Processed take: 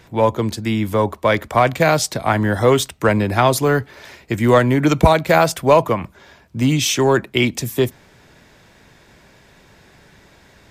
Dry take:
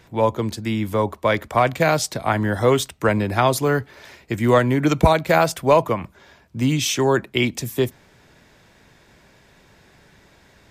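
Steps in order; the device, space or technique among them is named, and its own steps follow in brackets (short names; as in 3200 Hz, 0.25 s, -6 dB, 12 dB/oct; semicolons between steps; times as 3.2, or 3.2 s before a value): parallel distortion (in parallel at -13.5 dB: hard clip -18 dBFS, distortion -7 dB); on the sum: gain +2 dB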